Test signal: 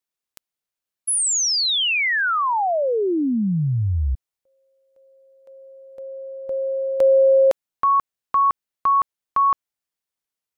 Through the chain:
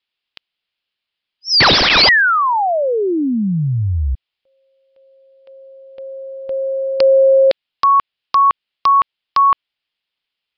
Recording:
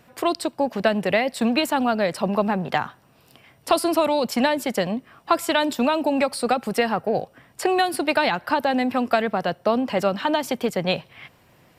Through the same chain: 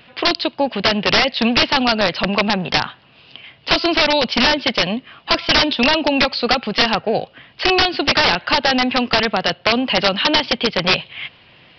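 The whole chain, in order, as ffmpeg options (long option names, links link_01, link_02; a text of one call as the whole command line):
ffmpeg -i in.wav -af "equalizer=frequency=3000:width_type=o:width=1.2:gain=14.5,aresample=11025,aeval=exprs='(mod(3.16*val(0)+1,2)-1)/3.16':channel_layout=same,aresample=44100,volume=3.5dB" out.wav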